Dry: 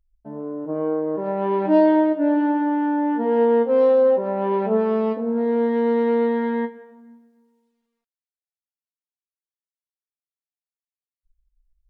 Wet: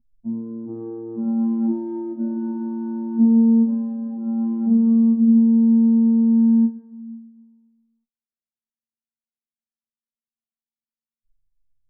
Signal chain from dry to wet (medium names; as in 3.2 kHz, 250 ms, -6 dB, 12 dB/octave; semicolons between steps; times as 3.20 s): compression, threshold -19 dBFS, peak gain reduction 7.5 dB; robot voice 114 Hz; gain riding within 4 dB 2 s; FFT filter 150 Hz 0 dB, 230 Hz +15 dB, 500 Hz -21 dB, 810 Hz -12 dB, 2.2 kHz -26 dB; on a send: reverberation, pre-delay 20 ms, DRR 9 dB